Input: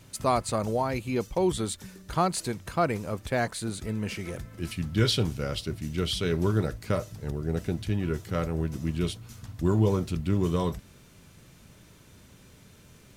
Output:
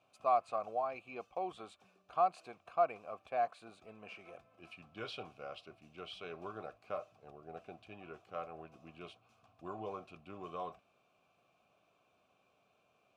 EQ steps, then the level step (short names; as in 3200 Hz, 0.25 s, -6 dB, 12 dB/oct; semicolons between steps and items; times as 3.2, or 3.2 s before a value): dynamic EQ 1700 Hz, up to +5 dB, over -45 dBFS, Q 0.96; vowel filter a; -1.5 dB